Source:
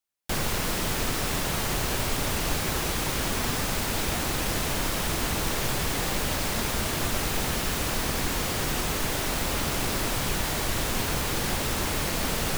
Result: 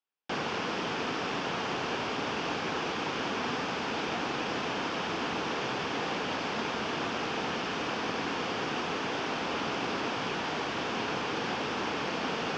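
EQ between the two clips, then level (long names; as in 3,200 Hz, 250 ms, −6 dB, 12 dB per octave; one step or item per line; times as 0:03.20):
high-frequency loss of the air 240 metres
loudspeaker in its box 350–6,400 Hz, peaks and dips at 360 Hz −4 dB, 590 Hz −7 dB, 2,000 Hz −6 dB, 4,000 Hz −8 dB
parametric band 1,200 Hz −4.5 dB 2.1 octaves
+6.0 dB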